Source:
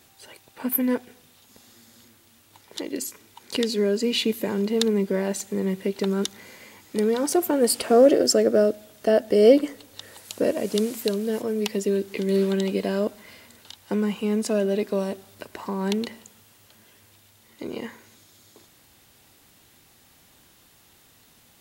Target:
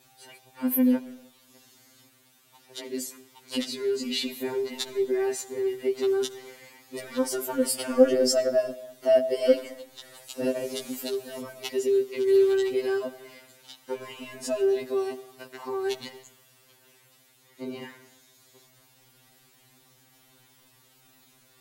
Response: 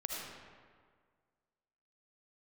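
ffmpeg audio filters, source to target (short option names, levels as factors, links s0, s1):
-filter_complex "[0:a]asettb=1/sr,asplit=3[s0][s1][s2];[s0]atrim=end=7.694[s3];[s1]atrim=start=7.69:end=8.14,asetpts=PTS-STARTPTS,afade=t=in:d=0.004:c=qsin,afade=t=out:st=0.446:d=0.004:c=qsin,bandreject=f=4000:w=8.9[s4];[s2]atrim=start=8.136[s5];[s3][s4]acrossfade=d=0.004:c1=hsin:c2=qsin[s6];[s6][s5]acrossfade=d=0.004:c1=qsin:c2=hsin,asettb=1/sr,asplit=3[s7][s8][s9];[s7]atrim=end=9.264[s10];[s8]atrim=start=9.26:end=9.66,asetpts=PTS-STARTPTS,afade=t=in:d=0.004:c=qsin,afade=t=out:st=0.396:d=0.004:c=qsin,highpass=f=320:p=1[s11];[s9]atrim=start=9.656[s12];[s10][s11]acrossfade=d=0.004:c1=hsin:c2=qsin[s13];[s13][s12]acrossfade=d=0.004:c1=qsin:c2=hsin,asoftclip=type=tanh:threshold=0.473,asplit=2[s14][s15];[1:a]atrim=start_sample=2205,afade=t=out:st=0.37:d=0.01,atrim=end_sample=16758[s16];[s15][s16]afir=irnorm=-1:irlink=0,volume=0.168[s17];[s14][s17]amix=inputs=2:normalize=0,afftfilt=real='re*2.45*eq(mod(b,6),0)':imag='im*2.45*eq(mod(b,6),0)':win_size=2048:overlap=0.75,volume=0.794"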